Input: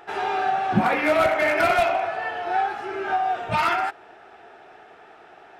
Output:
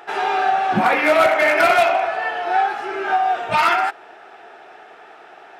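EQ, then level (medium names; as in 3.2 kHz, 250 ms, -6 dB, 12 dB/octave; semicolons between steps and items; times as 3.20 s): high-pass 380 Hz 6 dB/octave; +6.0 dB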